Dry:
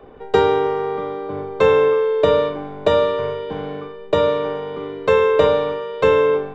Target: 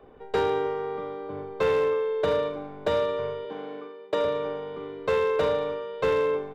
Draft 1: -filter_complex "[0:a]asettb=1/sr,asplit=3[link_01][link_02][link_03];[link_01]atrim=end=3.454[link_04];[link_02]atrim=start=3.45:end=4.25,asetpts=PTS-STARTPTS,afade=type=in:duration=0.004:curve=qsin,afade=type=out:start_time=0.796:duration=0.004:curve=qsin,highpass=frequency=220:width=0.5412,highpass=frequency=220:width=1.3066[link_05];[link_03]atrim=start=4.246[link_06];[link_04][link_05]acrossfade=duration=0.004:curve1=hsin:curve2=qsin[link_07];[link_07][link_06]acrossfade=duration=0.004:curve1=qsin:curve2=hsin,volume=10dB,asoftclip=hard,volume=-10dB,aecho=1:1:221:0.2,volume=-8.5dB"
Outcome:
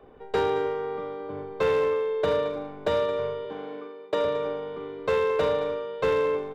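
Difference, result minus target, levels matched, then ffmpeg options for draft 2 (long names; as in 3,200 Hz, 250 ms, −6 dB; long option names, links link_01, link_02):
echo-to-direct +6.5 dB
-filter_complex "[0:a]asettb=1/sr,asplit=3[link_01][link_02][link_03];[link_01]atrim=end=3.454[link_04];[link_02]atrim=start=3.45:end=4.25,asetpts=PTS-STARTPTS,afade=type=in:duration=0.004:curve=qsin,afade=type=out:start_time=0.796:duration=0.004:curve=qsin,highpass=frequency=220:width=0.5412,highpass=frequency=220:width=1.3066[link_05];[link_03]atrim=start=4.246[link_06];[link_04][link_05]acrossfade=duration=0.004:curve1=hsin:curve2=qsin[link_07];[link_07][link_06]acrossfade=duration=0.004:curve1=qsin:curve2=hsin,volume=10dB,asoftclip=hard,volume=-10dB,aecho=1:1:221:0.0944,volume=-8.5dB"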